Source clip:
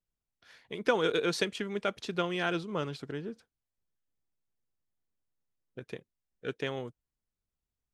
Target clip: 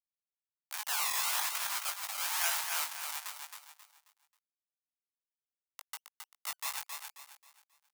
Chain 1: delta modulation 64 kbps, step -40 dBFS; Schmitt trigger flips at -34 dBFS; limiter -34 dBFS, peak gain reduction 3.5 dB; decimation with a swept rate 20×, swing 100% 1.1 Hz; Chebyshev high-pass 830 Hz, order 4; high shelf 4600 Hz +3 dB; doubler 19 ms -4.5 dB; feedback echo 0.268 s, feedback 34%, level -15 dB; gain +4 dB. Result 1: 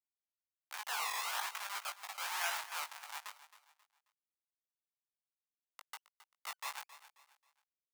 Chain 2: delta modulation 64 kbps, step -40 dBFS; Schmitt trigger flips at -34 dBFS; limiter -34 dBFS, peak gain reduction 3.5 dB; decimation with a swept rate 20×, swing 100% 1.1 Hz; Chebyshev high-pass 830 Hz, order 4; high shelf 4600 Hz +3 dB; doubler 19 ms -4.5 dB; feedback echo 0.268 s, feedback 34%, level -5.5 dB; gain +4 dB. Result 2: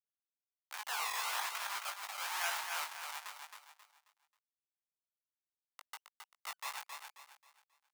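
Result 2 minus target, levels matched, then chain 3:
8000 Hz band -3.0 dB
delta modulation 64 kbps, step -40 dBFS; Schmitt trigger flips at -34 dBFS; limiter -34 dBFS, peak gain reduction 3.5 dB; decimation with a swept rate 20×, swing 100% 1.1 Hz; Chebyshev high-pass 830 Hz, order 4; high shelf 4600 Hz +14.5 dB; doubler 19 ms -4.5 dB; feedback echo 0.268 s, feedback 34%, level -5.5 dB; gain +4 dB

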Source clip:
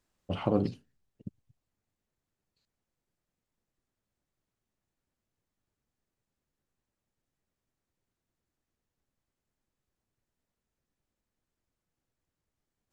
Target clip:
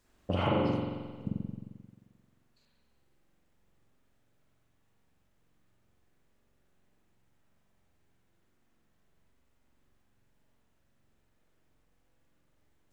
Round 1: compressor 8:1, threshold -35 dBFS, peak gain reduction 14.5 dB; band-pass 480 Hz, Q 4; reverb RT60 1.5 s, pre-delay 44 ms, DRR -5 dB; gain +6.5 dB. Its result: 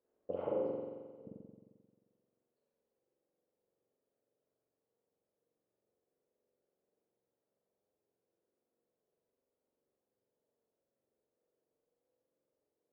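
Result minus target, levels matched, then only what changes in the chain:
500 Hz band +3.5 dB
remove: band-pass 480 Hz, Q 4

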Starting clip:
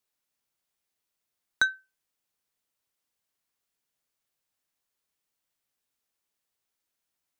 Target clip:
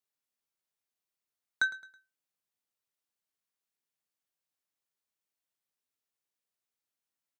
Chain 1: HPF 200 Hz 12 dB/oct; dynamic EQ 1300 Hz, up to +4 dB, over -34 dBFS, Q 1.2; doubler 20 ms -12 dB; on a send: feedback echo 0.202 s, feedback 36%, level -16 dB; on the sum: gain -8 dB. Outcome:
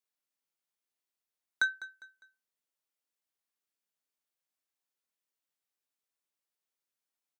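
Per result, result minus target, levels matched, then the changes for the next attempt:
echo 94 ms late; 125 Hz band -7.5 dB
change: feedback echo 0.108 s, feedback 36%, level -16 dB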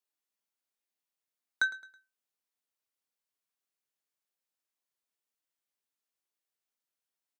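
125 Hz band -7.5 dB
change: HPF 87 Hz 12 dB/oct

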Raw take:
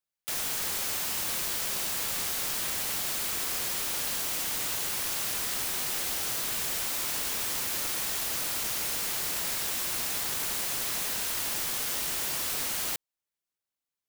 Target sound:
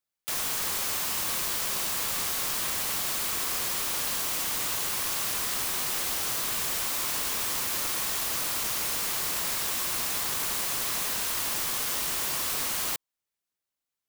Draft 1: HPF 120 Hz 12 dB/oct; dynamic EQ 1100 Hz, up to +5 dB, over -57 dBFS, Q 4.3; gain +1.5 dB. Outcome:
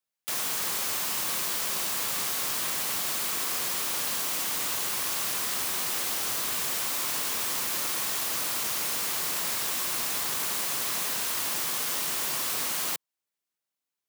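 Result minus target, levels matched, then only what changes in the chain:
125 Hz band -3.0 dB
remove: HPF 120 Hz 12 dB/oct

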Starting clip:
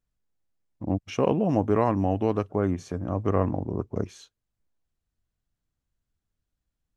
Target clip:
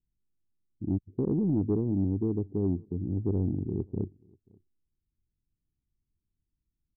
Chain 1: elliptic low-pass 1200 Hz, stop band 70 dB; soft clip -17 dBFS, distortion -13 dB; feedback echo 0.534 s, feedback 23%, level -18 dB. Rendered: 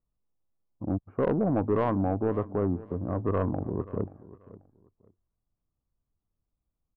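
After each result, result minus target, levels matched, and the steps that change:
1000 Hz band +17.5 dB; echo-to-direct +10 dB
change: elliptic low-pass 380 Hz, stop band 70 dB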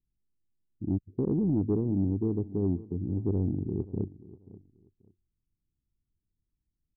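echo-to-direct +10 dB
change: feedback echo 0.534 s, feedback 23%, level -28 dB

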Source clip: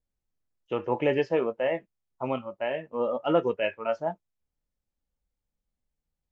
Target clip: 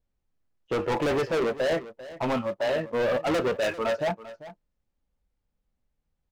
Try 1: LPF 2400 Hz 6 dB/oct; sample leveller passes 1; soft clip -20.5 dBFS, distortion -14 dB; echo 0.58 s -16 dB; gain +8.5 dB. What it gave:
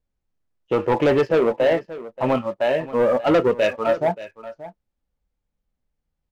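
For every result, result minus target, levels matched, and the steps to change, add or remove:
echo 0.186 s late; soft clip: distortion -8 dB
change: echo 0.394 s -16 dB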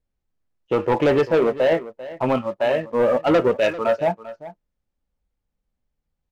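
soft clip: distortion -8 dB
change: soft clip -31.5 dBFS, distortion -6 dB

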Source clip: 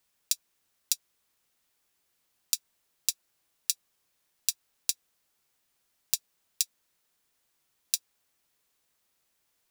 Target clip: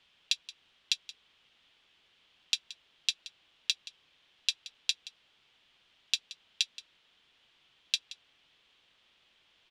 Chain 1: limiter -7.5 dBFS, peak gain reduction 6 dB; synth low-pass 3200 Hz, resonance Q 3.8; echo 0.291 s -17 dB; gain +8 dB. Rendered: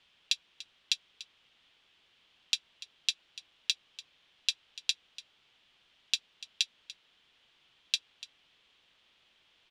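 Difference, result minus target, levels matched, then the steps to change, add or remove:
echo 0.116 s late
change: echo 0.175 s -17 dB

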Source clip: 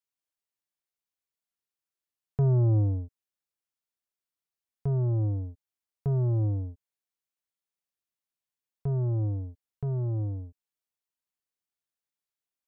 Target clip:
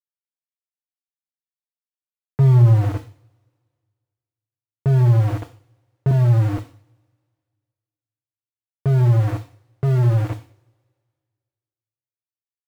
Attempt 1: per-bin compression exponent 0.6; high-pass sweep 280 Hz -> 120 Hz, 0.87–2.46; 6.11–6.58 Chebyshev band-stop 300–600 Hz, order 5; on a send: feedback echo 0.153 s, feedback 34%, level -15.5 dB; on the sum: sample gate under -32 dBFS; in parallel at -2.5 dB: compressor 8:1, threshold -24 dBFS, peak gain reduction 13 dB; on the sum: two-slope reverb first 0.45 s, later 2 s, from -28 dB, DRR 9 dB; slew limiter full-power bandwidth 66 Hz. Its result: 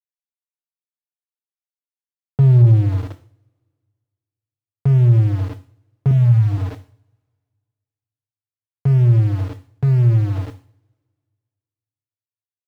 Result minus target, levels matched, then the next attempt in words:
compressor: peak gain reduction +13 dB; sample gate: distortion -13 dB
per-bin compression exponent 0.6; high-pass sweep 280 Hz -> 120 Hz, 0.87–2.46; 6.11–6.58 Chebyshev band-stop 300–600 Hz, order 5; on a send: feedback echo 0.153 s, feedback 34%, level -15.5 dB; on the sum: sample gate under -21 dBFS; two-slope reverb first 0.45 s, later 2 s, from -28 dB, DRR 9 dB; slew limiter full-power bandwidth 66 Hz

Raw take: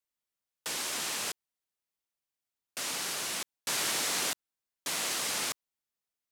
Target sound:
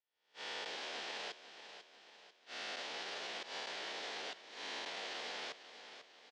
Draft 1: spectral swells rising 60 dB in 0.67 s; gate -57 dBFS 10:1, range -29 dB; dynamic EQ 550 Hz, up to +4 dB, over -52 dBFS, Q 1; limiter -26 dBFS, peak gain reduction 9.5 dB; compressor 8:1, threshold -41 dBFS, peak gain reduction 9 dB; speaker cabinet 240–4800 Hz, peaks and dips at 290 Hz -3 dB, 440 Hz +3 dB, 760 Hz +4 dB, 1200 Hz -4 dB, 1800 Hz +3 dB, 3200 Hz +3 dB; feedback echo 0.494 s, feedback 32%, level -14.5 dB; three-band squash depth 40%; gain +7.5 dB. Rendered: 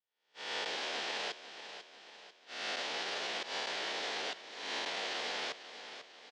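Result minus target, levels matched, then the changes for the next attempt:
compressor: peak gain reduction -6 dB
change: compressor 8:1, threshold -48 dBFS, peak gain reduction 15.5 dB

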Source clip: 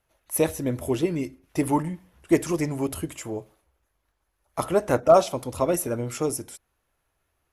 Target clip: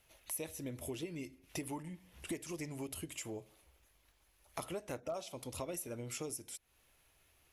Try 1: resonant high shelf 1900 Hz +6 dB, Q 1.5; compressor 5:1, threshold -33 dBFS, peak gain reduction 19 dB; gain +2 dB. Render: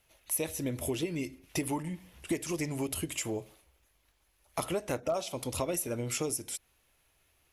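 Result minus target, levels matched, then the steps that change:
compressor: peak gain reduction -9 dB
change: compressor 5:1, threshold -44.5 dBFS, peak gain reduction 28.5 dB

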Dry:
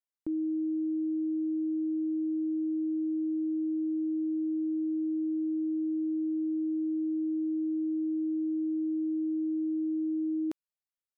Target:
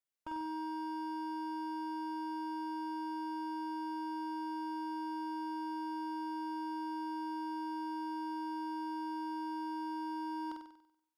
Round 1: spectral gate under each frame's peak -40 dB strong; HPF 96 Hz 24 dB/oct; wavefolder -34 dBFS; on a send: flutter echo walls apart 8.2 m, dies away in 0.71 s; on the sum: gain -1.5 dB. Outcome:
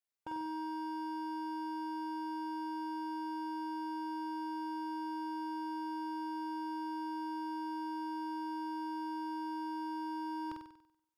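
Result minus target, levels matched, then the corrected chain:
125 Hz band +4.5 dB
spectral gate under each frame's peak -40 dB strong; HPF 28 Hz 24 dB/oct; wavefolder -34 dBFS; on a send: flutter echo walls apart 8.2 m, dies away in 0.71 s; on the sum: gain -1.5 dB

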